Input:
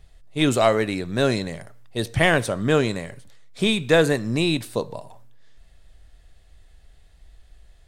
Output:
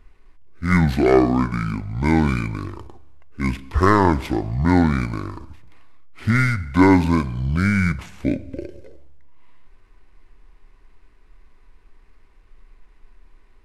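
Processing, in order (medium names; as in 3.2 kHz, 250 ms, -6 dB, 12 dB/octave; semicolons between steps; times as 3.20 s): median filter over 5 samples; treble shelf 12 kHz -3.5 dB; feedback comb 170 Hz, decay 0.62 s, harmonics all, mix 30%; speed mistake 78 rpm record played at 45 rpm; trim +5.5 dB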